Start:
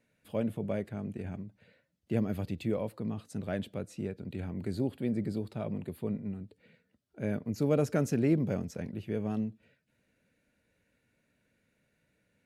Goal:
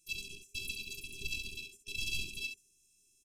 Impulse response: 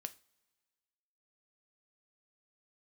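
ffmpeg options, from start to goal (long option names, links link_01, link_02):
-af "highpass=99,lowshelf=frequency=310:width_type=q:width=1.5:gain=10.5,bandreject=frequency=50:width_type=h:width=6,bandreject=frequency=100:width_type=h:width=6,bandreject=frequency=150:width_type=h:width=6,bandreject=frequency=200:width_type=h:width=6,bandreject=frequency=250:width_type=h:width=6,aresample=8000,asoftclip=type=hard:threshold=-26.5dB,aresample=44100,alimiter=level_in=9dB:limit=-24dB:level=0:latency=1,volume=-9dB,aecho=1:1:54|141|257:0.141|0.251|0.422,afftfilt=real='hypot(re,im)*cos(PI*b)':imag='0':win_size=1024:overlap=0.75,asetrate=169344,aresample=44100,afftfilt=real='re*(1-between(b*sr/4096,410,2400))':imag='im*(1-between(b*sr/4096,410,2400))':win_size=4096:overlap=0.75,volume=12.5dB"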